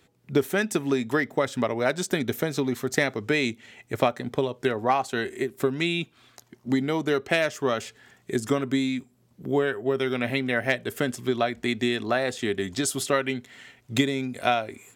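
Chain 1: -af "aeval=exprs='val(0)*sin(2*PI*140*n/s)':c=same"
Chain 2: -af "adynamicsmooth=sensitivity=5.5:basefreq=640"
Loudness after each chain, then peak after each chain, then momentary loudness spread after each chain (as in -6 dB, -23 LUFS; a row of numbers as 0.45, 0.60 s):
-29.5, -26.5 LUFS; -7.5, -5.0 dBFS; 6, 5 LU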